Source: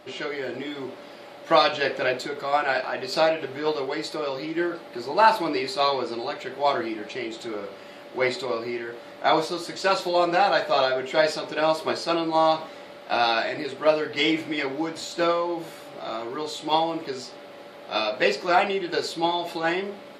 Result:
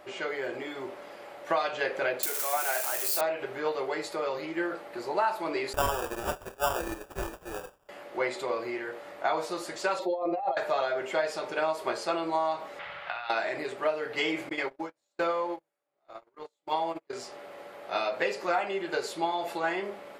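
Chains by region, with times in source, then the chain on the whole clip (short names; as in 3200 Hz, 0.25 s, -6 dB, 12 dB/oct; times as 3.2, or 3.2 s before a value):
2.23–3.21 switching spikes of -15 dBFS + tone controls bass -11 dB, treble +2 dB
5.73–7.89 expander -28 dBFS + high shelf 2000 Hz +12 dB + sample-rate reducer 2100 Hz
9.99–10.57 spectral contrast raised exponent 1.7 + negative-ratio compressor -24 dBFS, ratio -0.5 + Butterworth band-stop 1500 Hz, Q 4
12.79–13.3 EQ curve 160 Hz 0 dB, 240 Hz -23 dB, 1400 Hz +2 dB, 3300 Hz +3 dB, 8100 Hz -23 dB + negative-ratio compressor -34 dBFS
14.49–17.13 gate -29 dBFS, range -38 dB + tremolo 1.2 Hz, depth 41%
whole clip: graphic EQ 125/250/4000 Hz -7/-8/-9 dB; compressor 4:1, threshold -25 dBFS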